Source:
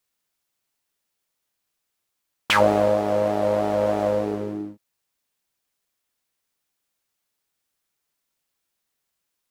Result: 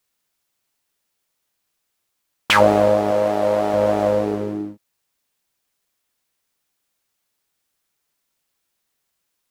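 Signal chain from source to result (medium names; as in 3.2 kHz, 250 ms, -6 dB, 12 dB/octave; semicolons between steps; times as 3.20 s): 3.11–3.74 s: bass shelf 200 Hz -7 dB; trim +4 dB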